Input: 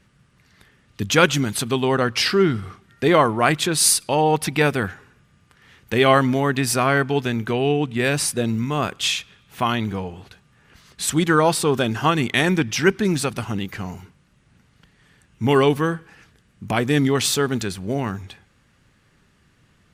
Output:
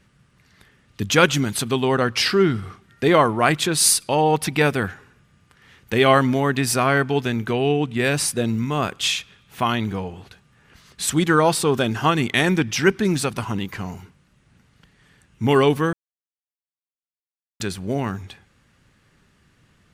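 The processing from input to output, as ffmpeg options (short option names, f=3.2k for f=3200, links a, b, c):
-filter_complex "[0:a]asettb=1/sr,asplit=3[a][b][c];[a]atrim=end=13.364[d];[b]atrim=start=13.36:end=13.8,asetpts=PTS-STARTPTS,afade=t=in:d=0.004:c=qsin,afade=t=out:st=0.436:d=0.004:c=qsin,equalizer=f=1k:t=o:w=0.21:g=9.5[e];[c]atrim=start=13.796[f];[d][e]acrossfade=d=0.004:c1=hsin:c2=qsin[g];[g][f]acrossfade=d=0.004:c1=qsin:c2=hsin,asplit=3[h][i][j];[h]atrim=end=15.93,asetpts=PTS-STARTPTS,afade=t=out:st=15.926:d=0.004:c=hsin[k];[i]atrim=start=15.93:end=17.6,asetpts=PTS-STARTPTS,volume=0[l];[j]atrim=start=17.6,asetpts=PTS-STARTPTS,afade=t=in:d=0.004:c=hsin[m];[k][l][m]concat=n=3:v=0:a=1"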